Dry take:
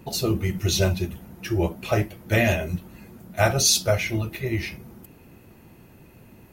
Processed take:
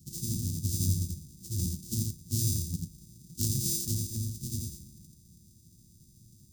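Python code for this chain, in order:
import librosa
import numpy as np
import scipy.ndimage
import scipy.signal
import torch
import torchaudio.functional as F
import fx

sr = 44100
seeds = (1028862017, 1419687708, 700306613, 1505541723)

p1 = np.r_[np.sort(x[:len(x) // 128 * 128].reshape(-1, 128), axis=1).ravel(), x[len(x) // 128 * 128:]]
p2 = scipy.signal.sosfilt(scipy.signal.cheby2(4, 80, [700.0, 1600.0], 'bandstop', fs=sr, output='sos'), p1)
p3 = fx.low_shelf(p2, sr, hz=69.0, db=-9.0)
p4 = p3 + fx.echo_single(p3, sr, ms=85, db=-3.5, dry=0)
y = p4 * 10.0 ** (-2.0 / 20.0)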